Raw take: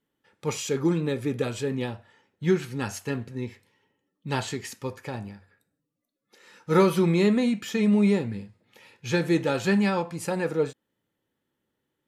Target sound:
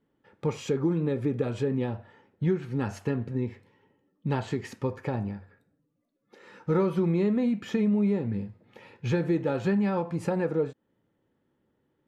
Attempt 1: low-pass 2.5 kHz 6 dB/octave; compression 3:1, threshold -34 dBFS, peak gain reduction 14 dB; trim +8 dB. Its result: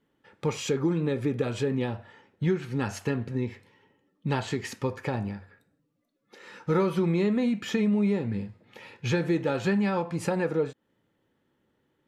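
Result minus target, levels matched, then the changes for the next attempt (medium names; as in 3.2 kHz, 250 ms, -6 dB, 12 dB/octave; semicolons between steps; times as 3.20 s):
2 kHz band +4.5 dB
change: low-pass 900 Hz 6 dB/octave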